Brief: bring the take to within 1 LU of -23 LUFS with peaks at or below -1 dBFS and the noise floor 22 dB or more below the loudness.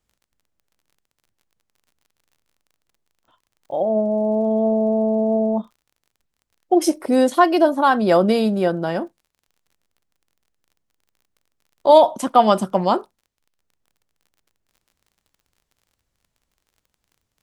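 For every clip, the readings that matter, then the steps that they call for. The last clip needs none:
tick rate 36 per s; loudness -18.0 LUFS; peak level -1.5 dBFS; loudness target -23.0 LUFS
-> de-click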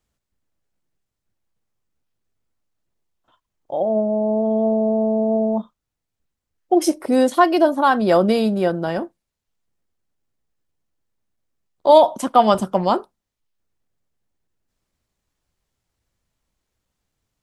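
tick rate 0.057 per s; loudness -18.0 LUFS; peak level -1.5 dBFS; loudness target -23.0 LUFS
-> trim -5 dB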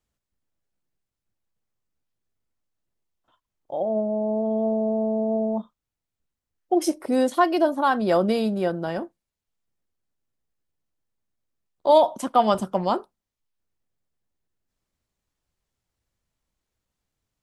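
loudness -23.0 LUFS; peak level -6.5 dBFS; noise floor -86 dBFS

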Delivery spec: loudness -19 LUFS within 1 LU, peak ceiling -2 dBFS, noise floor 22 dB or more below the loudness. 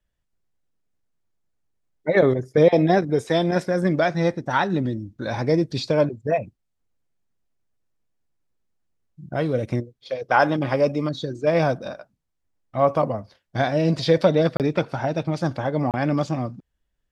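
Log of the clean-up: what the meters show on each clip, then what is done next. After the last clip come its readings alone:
dropouts 2; longest dropout 28 ms; loudness -22.5 LUFS; peak level -4.5 dBFS; loudness target -19.0 LUFS
-> interpolate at 14.57/15.91 s, 28 ms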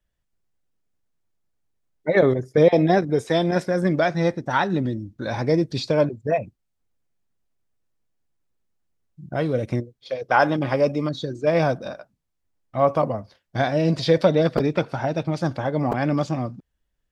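dropouts 0; loudness -22.5 LUFS; peak level -4.5 dBFS; loudness target -19.0 LUFS
-> trim +3.5 dB; peak limiter -2 dBFS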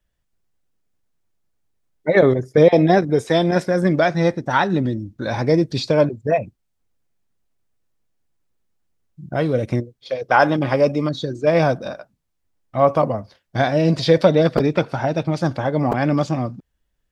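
loudness -19.0 LUFS; peak level -2.0 dBFS; noise floor -72 dBFS

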